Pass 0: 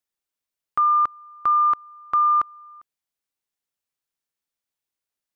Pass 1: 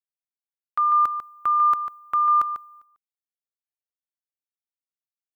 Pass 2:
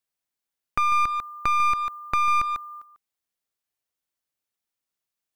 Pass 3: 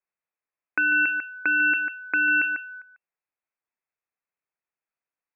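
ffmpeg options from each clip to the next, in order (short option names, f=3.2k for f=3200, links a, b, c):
-filter_complex "[0:a]agate=range=-33dB:threshold=-40dB:ratio=3:detection=peak,aemphasis=mode=production:type=75fm,asplit=2[a][b];[b]adelay=145.8,volume=-9dB,highshelf=f=4k:g=-3.28[c];[a][c]amix=inputs=2:normalize=0,volume=-2.5dB"
-af "acompressor=threshold=-32dB:ratio=2,aeval=exprs='clip(val(0),-1,0.0168)':c=same,volume=8.5dB"
-af "lowpass=f=2.3k:t=q:w=0.5098,lowpass=f=2.3k:t=q:w=0.6013,lowpass=f=2.3k:t=q:w=0.9,lowpass=f=2.3k:t=q:w=2.563,afreqshift=-2700"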